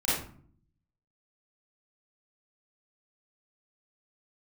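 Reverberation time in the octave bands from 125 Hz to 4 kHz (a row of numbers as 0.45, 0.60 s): 0.95, 0.85, 0.55, 0.50, 0.40, 0.30 s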